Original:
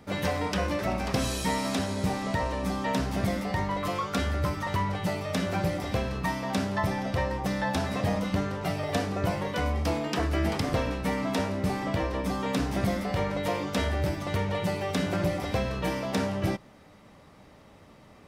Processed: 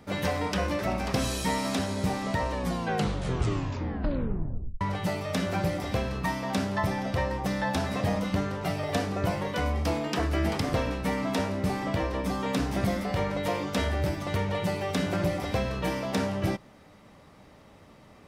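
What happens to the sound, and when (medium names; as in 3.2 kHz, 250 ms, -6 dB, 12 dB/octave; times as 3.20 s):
2.53 s: tape stop 2.28 s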